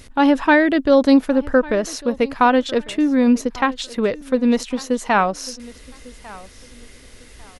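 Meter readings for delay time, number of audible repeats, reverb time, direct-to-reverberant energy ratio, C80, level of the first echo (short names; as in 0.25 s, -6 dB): 1.149 s, 2, none, none, none, -21.0 dB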